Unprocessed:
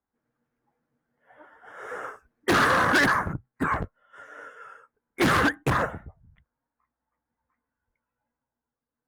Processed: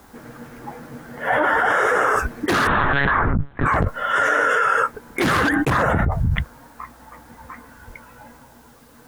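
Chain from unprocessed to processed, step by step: 2.67–3.66 monotone LPC vocoder at 8 kHz 140 Hz; fast leveller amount 100%

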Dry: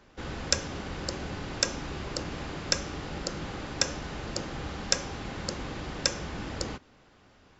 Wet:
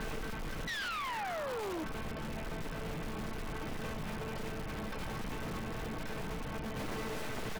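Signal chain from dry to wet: LPF 2800 Hz 24 dB/oct; low shelf 200 Hz +11.5 dB; notches 50/100/150/200/250/300/350/400/450 Hz; comb 6.5 ms, depth 50%; negative-ratio compressor -44 dBFS, ratio -1; resonator 220 Hz, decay 0.24 s, harmonics all, mix 90%; echo with dull and thin repeats by turns 0.117 s, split 970 Hz, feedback 81%, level -3.5 dB; in parallel at -4 dB: wrapped overs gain 52 dB; on the sum: painted sound fall, 0.67–1.84, 300–2000 Hz -48 dBFS; sine folder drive 10 dB, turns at -37 dBFS; gain +2.5 dB

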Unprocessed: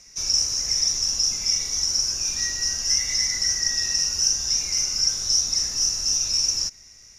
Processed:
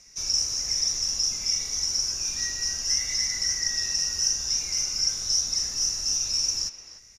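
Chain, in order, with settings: speakerphone echo 0.3 s, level -9 dB; gain -3.5 dB

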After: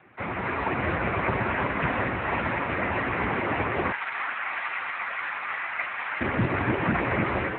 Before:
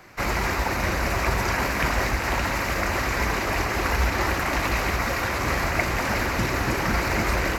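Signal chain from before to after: 3.91–6.21 HPF 1100 Hz 12 dB/oct; AGC gain up to 5 dB; air absorption 260 m; gain -1.5 dB; AMR-NB 6.7 kbps 8000 Hz

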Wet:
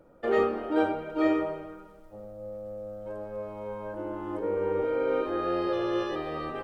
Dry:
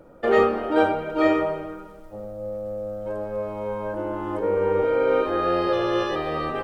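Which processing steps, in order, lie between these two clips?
dynamic EQ 320 Hz, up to +5 dB, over -33 dBFS, Q 2.2; gain -8 dB

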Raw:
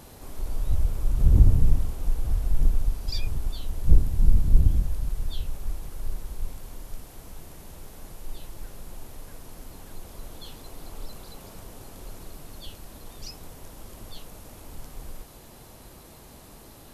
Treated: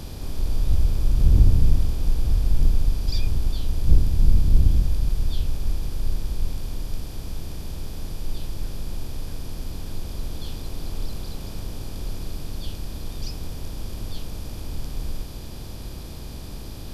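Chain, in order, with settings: per-bin compression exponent 0.6; gain -1 dB

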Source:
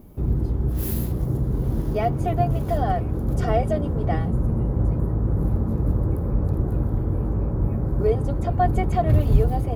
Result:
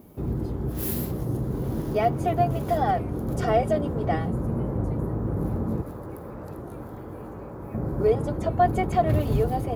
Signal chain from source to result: HPF 210 Hz 6 dB/oct, from 5.82 s 960 Hz, from 7.74 s 210 Hz; record warp 33 1/3 rpm, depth 100 cents; gain +1.5 dB

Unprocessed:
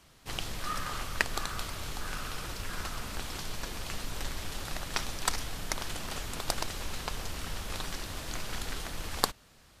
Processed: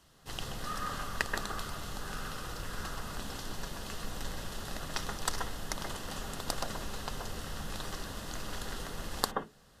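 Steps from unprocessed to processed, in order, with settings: notch 2300 Hz, Q 5.6; on a send: brick-wall FIR low-pass 3700 Hz + reverb RT60 0.20 s, pre-delay 0.127 s, DRR 7 dB; on the sum: gain -3.5 dB

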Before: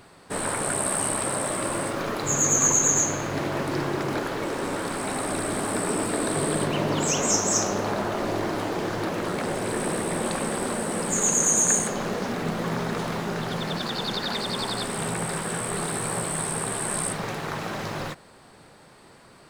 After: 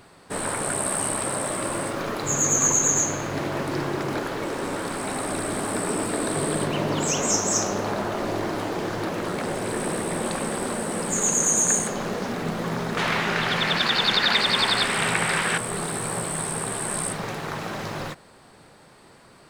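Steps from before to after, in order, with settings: 12.97–15.58 bell 2300 Hz +14 dB 2.1 oct

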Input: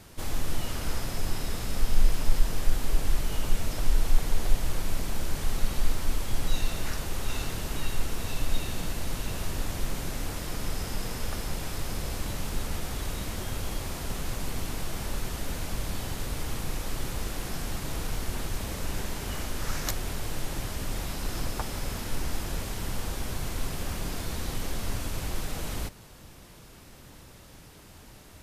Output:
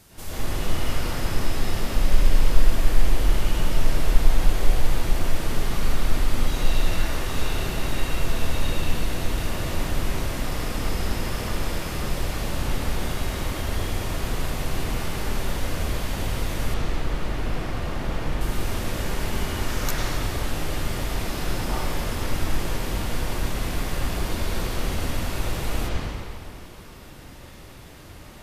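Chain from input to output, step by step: high shelf 5000 Hz +7 dB, from 16.74 s -6 dB, from 18.41 s +7.5 dB; reverb RT60 2.4 s, pre-delay 92 ms, DRR -10.5 dB; gain -4.5 dB

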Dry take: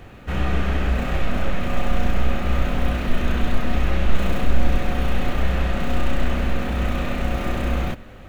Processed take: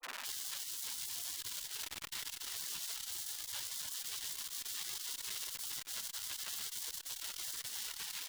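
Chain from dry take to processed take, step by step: rattling part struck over -32 dBFS, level -14 dBFS; HPF 380 Hz 12 dB/oct; grains, pitch spread up and down by 0 st; negative-ratio compressor -32 dBFS, ratio -0.5; echo 0.407 s -12.5 dB; on a send at -5 dB: reverb RT60 2.9 s, pre-delay 16 ms; on the sum: limiter -22.5 dBFS, peak gain reduction 10 dB; LPF 2500 Hz 12 dB/oct; Schmitt trigger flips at -41.5 dBFS; spectral gate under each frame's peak -20 dB weak; crackling interface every 0.14 s, samples 128, repeat, from 0.83; core saturation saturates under 2100 Hz; gain +6 dB

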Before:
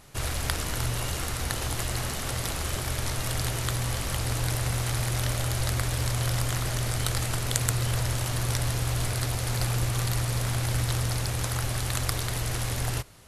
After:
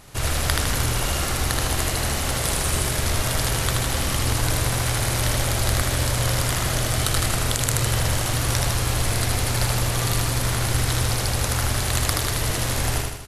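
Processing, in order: 2.4–2.89 bell 9100 Hz +5.5 dB 0.42 oct; feedback echo 78 ms, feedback 53%, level -3 dB; maximiser +6 dB; gain -1 dB

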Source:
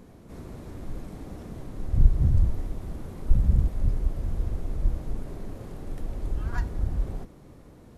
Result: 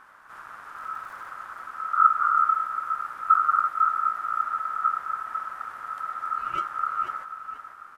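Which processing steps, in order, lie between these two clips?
0.76–1.3 zero-crossing step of -47 dBFS; frequency-shifting echo 0.488 s, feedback 33%, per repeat -49 Hz, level -9 dB; ring modulator 1300 Hz

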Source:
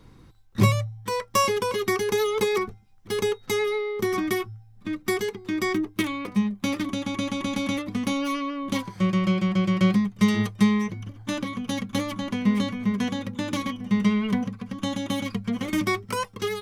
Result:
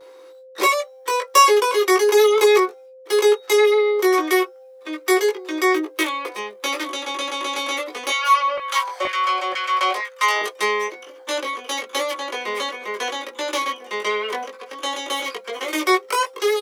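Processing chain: gate with hold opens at -47 dBFS; steep high-pass 360 Hz 48 dB/oct; 8.1–10.42 LFO high-pass saw down 2.1 Hz 540–1900 Hz; whine 520 Hz -52 dBFS; doubler 19 ms -3 dB; gain +6.5 dB

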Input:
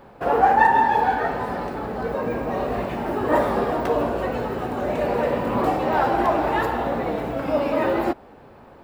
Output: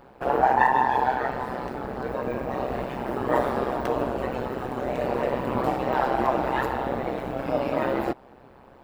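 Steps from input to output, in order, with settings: AM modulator 130 Hz, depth 75%

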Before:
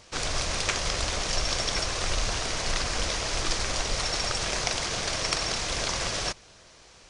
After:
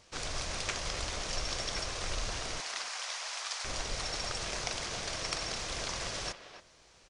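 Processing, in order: 2.6–3.65 HPF 730 Hz 24 dB/oct; speakerphone echo 0.28 s, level -10 dB; gain -8 dB

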